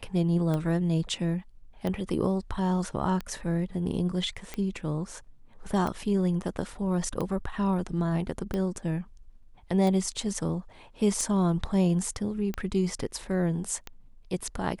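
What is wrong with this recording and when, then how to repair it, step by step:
tick 45 rpm -19 dBFS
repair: de-click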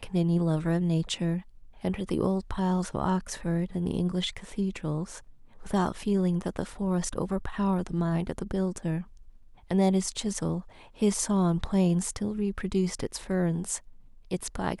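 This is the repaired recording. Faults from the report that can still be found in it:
none

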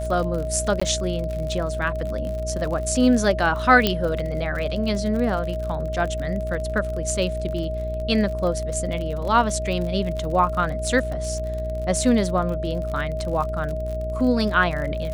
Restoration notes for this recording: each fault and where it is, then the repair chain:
buzz 60 Hz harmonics 13 -29 dBFS
crackle 49/s -29 dBFS
tone 630 Hz -28 dBFS
0.8–0.81 gap 15 ms
3.87 pop -5 dBFS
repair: de-click; de-hum 60 Hz, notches 13; notch 630 Hz, Q 30; interpolate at 0.8, 15 ms

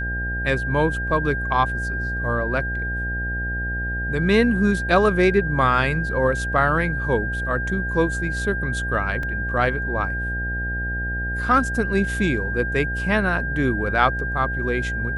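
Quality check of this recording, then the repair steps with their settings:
buzz 60 Hz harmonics 14 -28 dBFS
tone 1600 Hz -26 dBFS
9.23 gap 2.9 ms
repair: de-hum 60 Hz, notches 14; notch 1600 Hz, Q 30; interpolate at 9.23, 2.9 ms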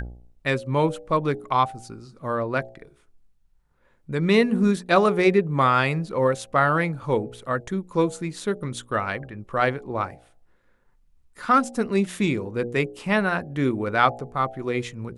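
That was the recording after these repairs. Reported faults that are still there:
none

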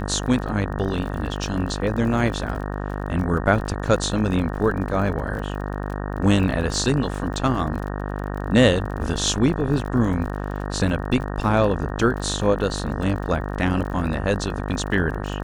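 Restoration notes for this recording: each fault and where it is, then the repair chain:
buzz 50 Hz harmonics 37 -28 dBFS
crackle 43/s -31 dBFS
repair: de-click; de-hum 50 Hz, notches 37

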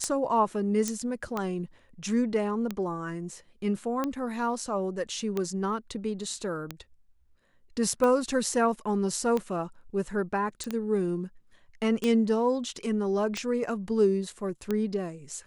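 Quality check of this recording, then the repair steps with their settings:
tick 45 rpm -16 dBFS
0.88 pop -16 dBFS
10.64 pop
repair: de-click

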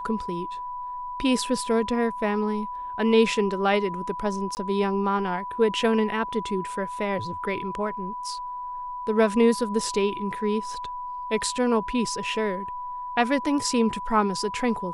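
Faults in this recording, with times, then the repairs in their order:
tone 990 Hz -31 dBFS
4.55–4.57 gap 19 ms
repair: notch 990 Hz, Q 30; interpolate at 4.55, 19 ms

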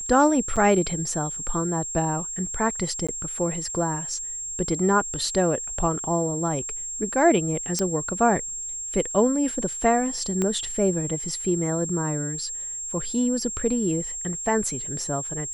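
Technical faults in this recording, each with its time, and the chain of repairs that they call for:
tone 7500 Hz -30 dBFS
0.56–0.57 gap 6.1 ms
3.07–3.09 gap 16 ms
7.79 pop -11 dBFS
10.42 pop -13 dBFS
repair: de-click; notch 7500 Hz, Q 30; interpolate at 0.56, 6.1 ms; interpolate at 3.07, 16 ms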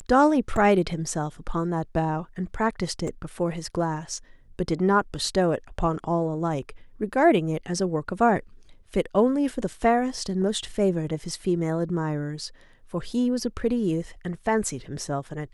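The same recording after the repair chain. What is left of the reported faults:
10.42 pop

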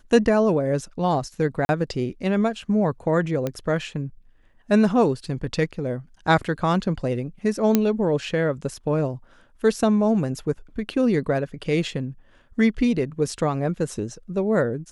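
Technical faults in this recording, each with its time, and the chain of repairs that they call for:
1.65–1.69 gap 41 ms
3.47 pop -13 dBFS
7.75 pop -4 dBFS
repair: de-click; interpolate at 1.65, 41 ms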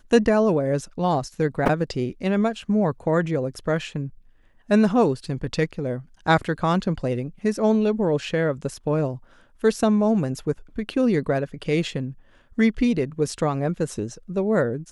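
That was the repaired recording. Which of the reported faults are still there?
none

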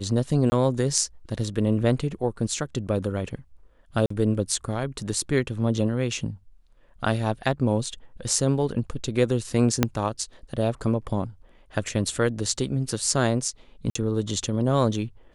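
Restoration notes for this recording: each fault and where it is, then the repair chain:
0.5–0.52 gap 20 ms
4.06–4.1 gap 44 ms
9.83 pop -4 dBFS
13.9–13.95 gap 54 ms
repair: de-click; interpolate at 0.5, 20 ms; interpolate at 4.06, 44 ms; interpolate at 13.9, 54 ms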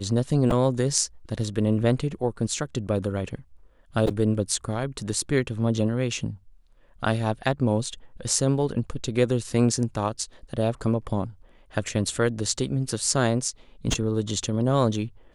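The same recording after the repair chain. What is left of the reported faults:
9.83 pop

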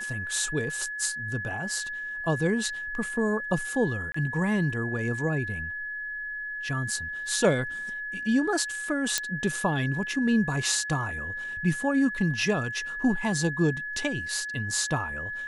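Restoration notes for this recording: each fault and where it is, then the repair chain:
tone 1700 Hz -32 dBFS
4.12–4.14 gap 24 ms
9.18 pop -7 dBFS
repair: de-click; notch 1700 Hz, Q 30; interpolate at 4.12, 24 ms

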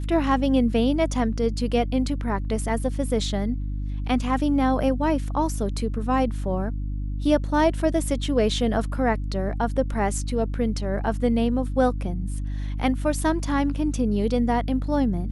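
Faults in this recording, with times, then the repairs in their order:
hum 50 Hz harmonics 6 -28 dBFS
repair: de-hum 50 Hz, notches 6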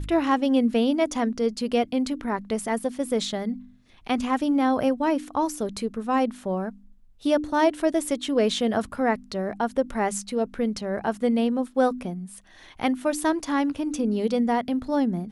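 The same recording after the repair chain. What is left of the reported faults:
none

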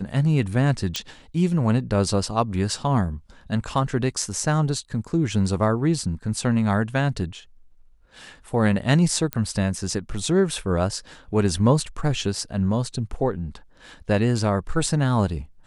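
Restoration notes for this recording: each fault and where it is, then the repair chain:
0.96 pop -9 dBFS
9.33 pop -10 dBFS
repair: de-click

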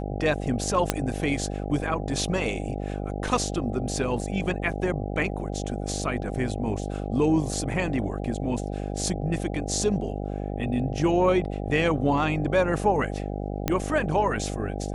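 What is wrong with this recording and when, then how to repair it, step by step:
buzz 50 Hz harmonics 16 -31 dBFS
0.9 pop -6 dBFS
13.68 pop -9 dBFS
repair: de-click; de-hum 50 Hz, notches 16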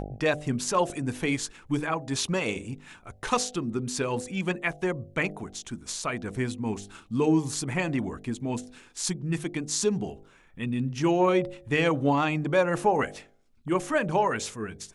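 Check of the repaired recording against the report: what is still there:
0.9 pop
13.68 pop

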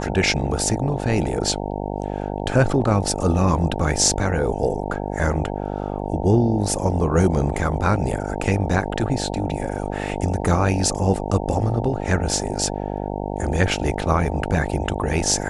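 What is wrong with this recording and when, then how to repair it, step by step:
buzz 50 Hz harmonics 18 -27 dBFS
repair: de-hum 50 Hz, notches 18

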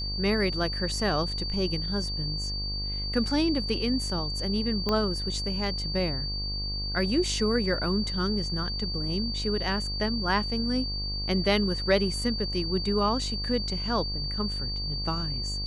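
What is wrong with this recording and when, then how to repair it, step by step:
buzz 50 Hz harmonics 24 -34 dBFS
tone 4600 Hz -32 dBFS
4.89 pop -14 dBFS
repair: de-click; de-hum 50 Hz, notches 24; notch 4600 Hz, Q 30

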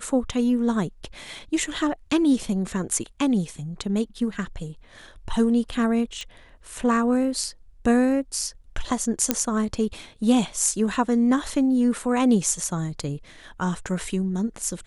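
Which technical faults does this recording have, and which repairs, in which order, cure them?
6.21 pop -21 dBFS
9.31 pop -3 dBFS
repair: de-click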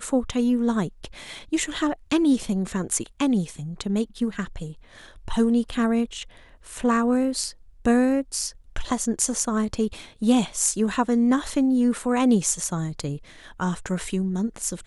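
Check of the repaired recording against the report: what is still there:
9.31 pop

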